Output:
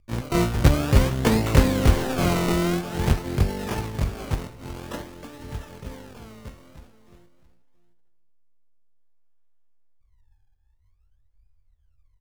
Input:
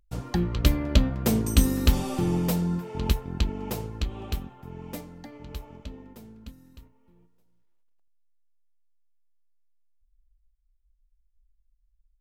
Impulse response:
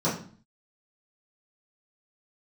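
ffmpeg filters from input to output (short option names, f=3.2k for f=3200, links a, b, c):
-filter_complex "[0:a]acrusher=samples=36:mix=1:aa=0.000001:lfo=1:lforange=36:lforate=0.5,bandreject=f=184.6:t=h:w=4,bandreject=f=369.2:t=h:w=4,bandreject=f=553.8:t=h:w=4,bandreject=f=738.4:t=h:w=4,bandreject=f=923:t=h:w=4,bandreject=f=1.1076k:t=h:w=4,bandreject=f=1.2922k:t=h:w=4,bandreject=f=1.4768k:t=h:w=4,bandreject=f=1.6614k:t=h:w=4,bandreject=f=1.846k:t=h:w=4,bandreject=f=2.0306k:t=h:w=4,bandreject=f=2.2152k:t=h:w=4,asplit=2[a][b];[b]asetrate=88200,aresample=44100,atempo=0.5,volume=-2dB[c];[a][c]amix=inputs=2:normalize=0,asplit=2[d][e];[e]aecho=0:1:670:0.158[f];[d][f]amix=inputs=2:normalize=0,volume=1.5dB"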